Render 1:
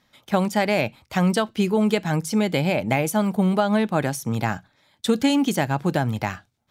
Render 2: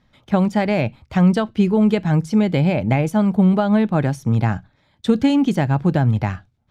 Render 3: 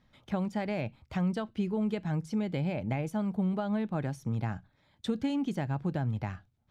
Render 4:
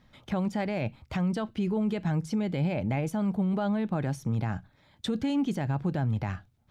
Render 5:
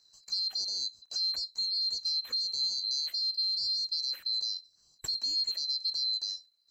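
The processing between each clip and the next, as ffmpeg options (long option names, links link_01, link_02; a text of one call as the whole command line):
ffmpeg -i in.wav -af "aemphasis=mode=reproduction:type=bsi" out.wav
ffmpeg -i in.wav -af "acompressor=threshold=-36dB:ratio=1.5,volume=-6.5dB" out.wav
ffmpeg -i in.wav -af "alimiter=level_in=3dB:limit=-24dB:level=0:latency=1:release=34,volume=-3dB,volume=6dB" out.wav
ffmpeg -i in.wav -af "afftfilt=real='real(if(lt(b,736),b+184*(1-2*mod(floor(b/184),2)),b),0)':imag='imag(if(lt(b,736),b+184*(1-2*mod(floor(b/184),2)),b),0)':win_size=2048:overlap=0.75,volume=-4dB" out.wav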